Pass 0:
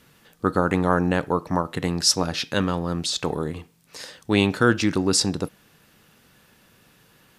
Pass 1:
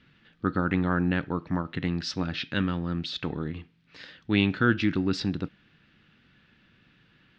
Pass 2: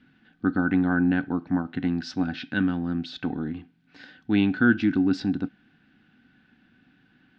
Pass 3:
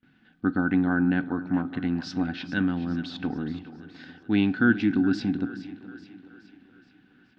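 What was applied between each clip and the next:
low-pass 3.7 kHz 24 dB/octave; high-order bell 680 Hz -9 dB; trim -2.5 dB
small resonant body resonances 260/750/1500 Hz, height 14 dB, ringing for 35 ms; trim -5.5 dB
two-band feedback delay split 320 Hz, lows 295 ms, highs 422 ms, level -14 dB; gate with hold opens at -50 dBFS; trim -1 dB

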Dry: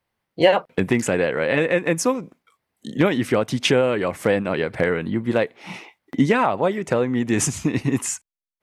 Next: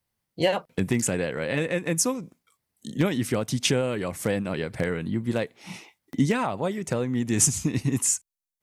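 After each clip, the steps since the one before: tone controls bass +8 dB, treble +13 dB; trim -8.5 dB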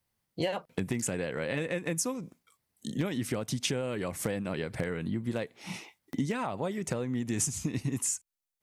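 compression 3:1, threshold -30 dBFS, peak gain reduction 11 dB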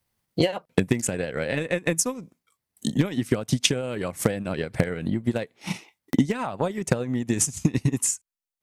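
transient shaper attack +9 dB, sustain -8 dB; trim +4 dB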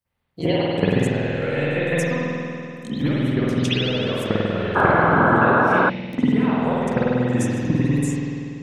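reverberation RT60 2.7 s, pre-delay 48 ms, DRR -17 dB; painted sound noise, 4.75–5.90 s, 250–1700 Hz -5 dBFS; trim -12 dB

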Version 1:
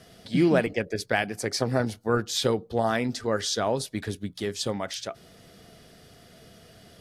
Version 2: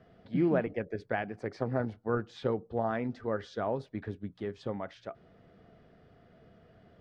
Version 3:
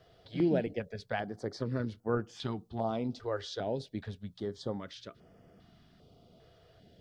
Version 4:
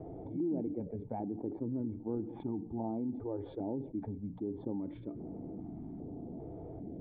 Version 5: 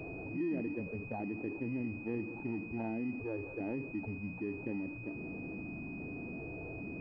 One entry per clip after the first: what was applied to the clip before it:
low-pass 1.6 kHz 12 dB/octave; trim -6 dB
resonant high shelf 2.8 kHz +8.5 dB, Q 1.5; step-sequenced notch 2.5 Hz 220–3900 Hz
cascade formant filter u; level flattener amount 70%; trim -2.5 dB
jump at every zero crossing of -46 dBFS; class-D stage that switches slowly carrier 2.5 kHz; trim -2 dB

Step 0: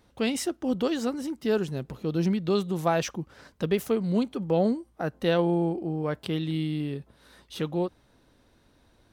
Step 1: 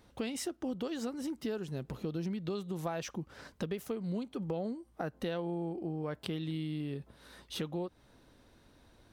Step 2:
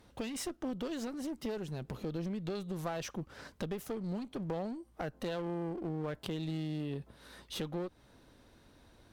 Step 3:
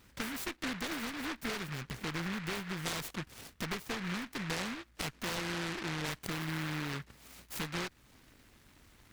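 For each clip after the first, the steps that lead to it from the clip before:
compression, threshold -34 dBFS, peak gain reduction 14 dB
one-sided clip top -40.5 dBFS; trim +1 dB
delay time shaken by noise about 1.6 kHz, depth 0.43 ms

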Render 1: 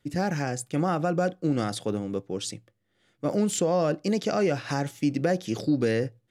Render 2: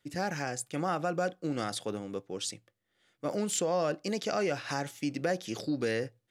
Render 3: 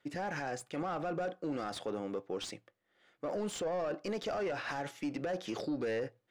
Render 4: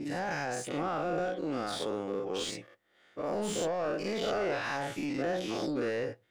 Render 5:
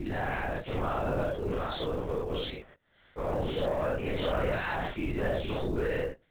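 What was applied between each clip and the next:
bass shelf 420 Hz -9.5 dB; trim -1.5 dB
overdrive pedal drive 19 dB, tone 1 kHz, clips at -17 dBFS; peak limiter -25 dBFS, peak gain reduction 6.5 dB; trim -3.5 dB
every event in the spectrogram widened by 120 ms; trim -1 dB
LPC vocoder at 8 kHz whisper; in parallel at -11.5 dB: short-mantissa float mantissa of 2-bit

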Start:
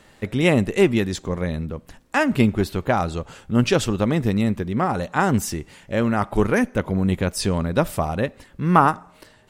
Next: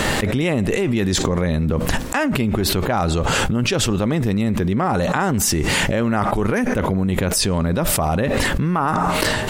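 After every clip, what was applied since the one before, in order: level flattener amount 100%; trim -7.5 dB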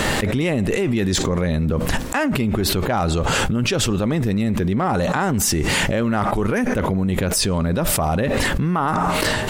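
saturation -7.5 dBFS, distortion -24 dB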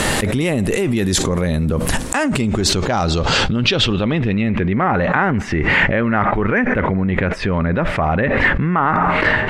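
low-pass sweep 11 kHz -> 2 kHz, 1.82–4.85 s; trim +2 dB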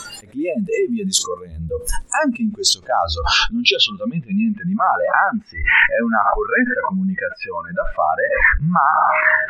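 spectral noise reduction 29 dB; trim +2.5 dB

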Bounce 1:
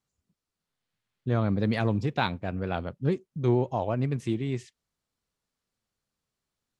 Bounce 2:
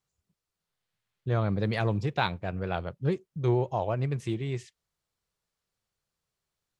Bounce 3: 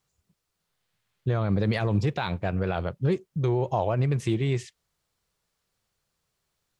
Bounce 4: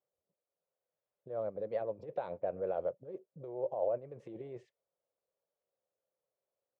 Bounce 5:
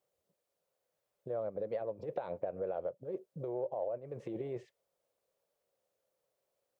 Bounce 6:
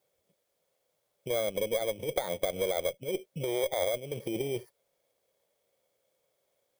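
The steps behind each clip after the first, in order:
peaking EQ 250 Hz -11 dB 0.41 oct
peak limiter -22.5 dBFS, peak gain reduction 11.5 dB; trim +7 dB
compressor with a negative ratio -26 dBFS, ratio -0.5; band-pass filter 550 Hz, Q 5.3
compression 6:1, threshold -41 dBFS, peak gain reduction 12.5 dB; trim +7 dB
bit-reversed sample order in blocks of 16 samples; Chebyshev shaper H 2 -16 dB, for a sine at -23.5 dBFS; trim +7 dB

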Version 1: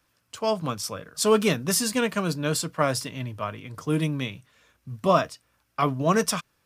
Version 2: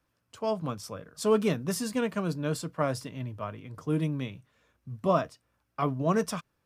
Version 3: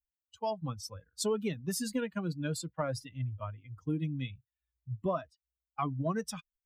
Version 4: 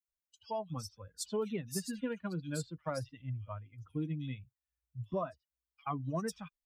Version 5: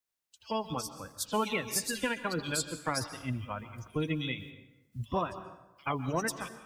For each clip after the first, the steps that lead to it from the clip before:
tilt shelf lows +4.5 dB, about 1.4 kHz; trim -7.5 dB
expander on every frequency bin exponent 2; compression 4:1, threshold -38 dBFS, peak gain reduction 14.5 dB; trim +7 dB
bands offset in time highs, lows 80 ms, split 3.2 kHz; trim -3.5 dB
spectral peaks clipped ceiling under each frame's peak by 20 dB; plate-style reverb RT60 1 s, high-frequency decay 0.65×, pre-delay 115 ms, DRR 12 dB; trim +5 dB

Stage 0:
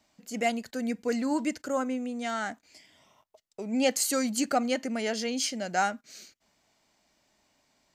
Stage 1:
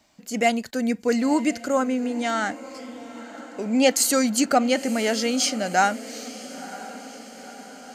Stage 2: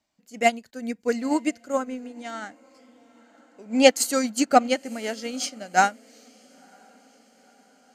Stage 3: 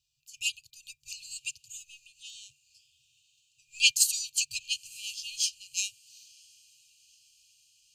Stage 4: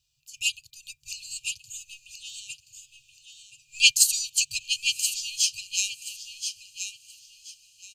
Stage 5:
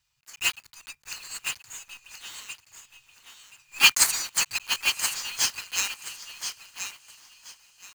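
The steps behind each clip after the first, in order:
echo that smears into a reverb 976 ms, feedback 59%, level -16 dB; trim +7 dB
upward expansion 2.5:1, over -28 dBFS; trim +5 dB
FFT band-reject 150–2400 Hz; trim +2 dB
bass shelf 110 Hz +4 dB; feedback delay 1027 ms, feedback 22%, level -8 dB; trim +4.5 dB
block-companded coder 3-bit; high-order bell 1.4 kHz +10 dB; trim -2 dB

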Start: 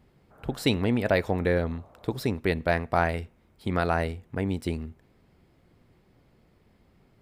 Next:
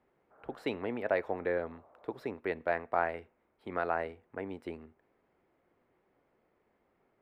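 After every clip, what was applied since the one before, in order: three-band isolator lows -18 dB, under 310 Hz, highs -20 dB, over 2.4 kHz; trim -5 dB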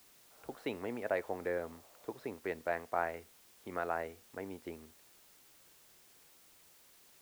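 added noise white -59 dBFS; trim -4 dB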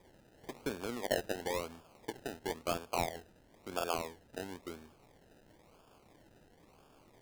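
decimation with a swept rate 31×, swing 60% 0.98 Hz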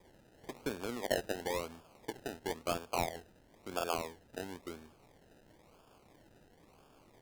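vibrato 0.41 Hz 6 cents

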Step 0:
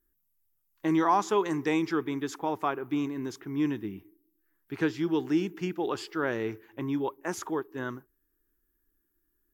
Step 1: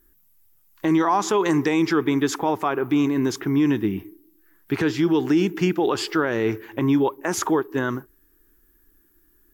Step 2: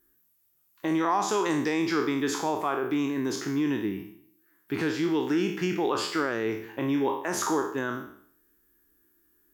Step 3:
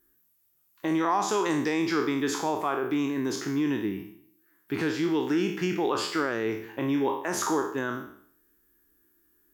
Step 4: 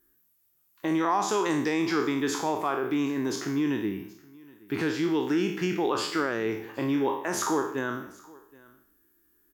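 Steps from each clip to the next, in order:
in parallel at +1 dB: compression, threshold -37 dBFS, peak gain reduction 16.5 dB; on the sum: peak limiter -20.5 dBFS, peak gain reduction 8 dB; trim +9 dB
spectral sustain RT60 0.60 s; high-pass 160 Hz 6 dB/octave; trim -6.5 dB
no audible change
delay 773 ms -24 dB

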